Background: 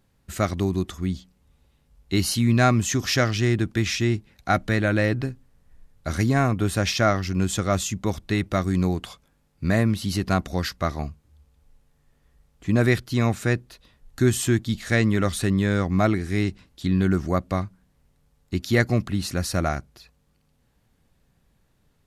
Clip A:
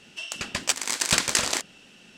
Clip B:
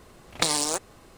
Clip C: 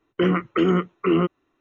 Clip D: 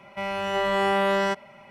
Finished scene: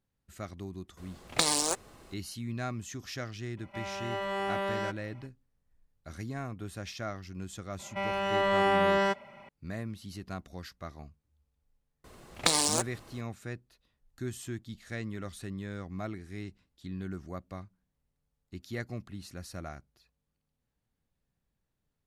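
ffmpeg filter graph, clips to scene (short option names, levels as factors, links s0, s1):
-filter_complex "[2:a]asplit=2[s0][s1];[4:a]asplit=2[s2][s3];[0:a]volume=0.133[s4];[s3]highshelf=f=7100:g=-7[s5];[s0]atrim=end=1.17,asetpts=PTS-STARTPTS,volume=0.75,afade=t=in:d=0.004:c=hsin,afade=t=out:st=1.166:d=0.004:c=hsin,adelay=970[s6];[s2]atrim=end=1.7,asetpts=PTS-STARTPTS,volume=0.316,afade=t=in:d=0.004:c=hsin,afade=t=out:st=1.696:d=0.004:c=hsin,adelay=157437S[s7];[s5]atrim=end=1.7,asetpts=PTS-STARTPTS,volume=0.75,afade=t=in:d=0.004:c=hsin,afade=t=out:st=1.696:d=0.004:c=hsin,adelay=7790[s8];[s1]atrim=end=1.17,asetpts=PTS-STARTPTS,volume=0.841,afade=t=in:d=0.004:c=hsin,afade=t=out:st=1.166:d=0.004:c=hsin,adelay=12040[s9];[s4][s6][s7][s8][s9]amix=inputs=5:normalize=0"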